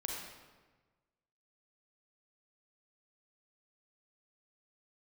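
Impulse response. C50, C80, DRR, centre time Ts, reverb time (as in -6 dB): 0.0 dB, 2.5 dB, -1.5 dB, 73 ms, 1.3 s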